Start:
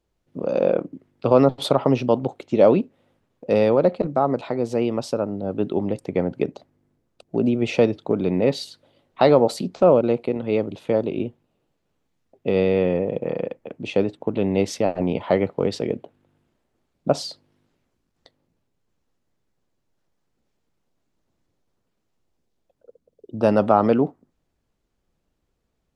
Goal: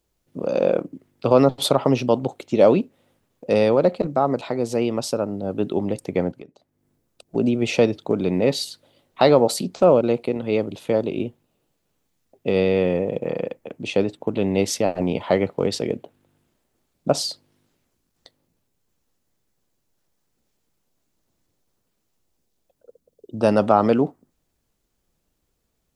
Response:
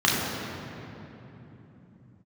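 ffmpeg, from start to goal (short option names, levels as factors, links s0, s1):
-filter_complex "[0:a]asettb=1/sr,asplit=3[s0][s1][s2];[s0]atrim=end=6.314[s3];[s1]atrim=start=6.31:end=7.35,asetpts=PTS-STARTPTS,afade=t=in:d=0.004:c=qsin,afade=t=out:st=1.036:d=0.004:c=qsin,acompressor=threshold=0.00562:ratio=3[s4];[s2]atrim=start=7.346[s5];[s3][s4]acrossfade=d=0.004:c1=hsin:c2=qsin[s6];[s6][s5]acrossfade=d=0.004:c1=qsin:c2=hsin,crystalizer=i=2:c=0"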